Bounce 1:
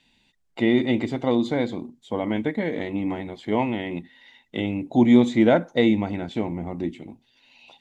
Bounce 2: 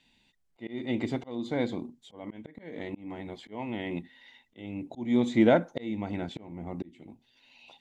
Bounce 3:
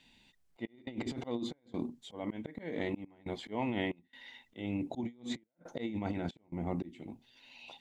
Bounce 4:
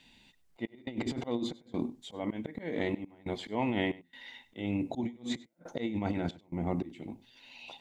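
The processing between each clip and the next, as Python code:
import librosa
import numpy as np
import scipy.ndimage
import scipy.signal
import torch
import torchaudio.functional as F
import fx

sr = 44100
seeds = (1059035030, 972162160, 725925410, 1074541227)

y1 = fx.auto_swell(x, sr, attack_ms=426.0)
y1 = y1 * 10.0 ** (-3.5 / 20.0)
y2 = fx.over_compress(y1, sr, threshold_db=-35.0, ratio=-0.5)
y2 = fx.step_gate(y2, sr, bpm=69, pattern='xxx.xxx.xxx', floor_db=-24.0, edge_ms=4.5)
y2 = y2 * 10.0 ** (-2.0 / 20.0)
y3 = y2 + 10.0 ** (-20.5 / 20.0) * np.pad(y2, (int(98 * sr / 1000.0), 0))[:len(y2)]
y3 = y3 * 10.0 ** (3.5 / 20.0)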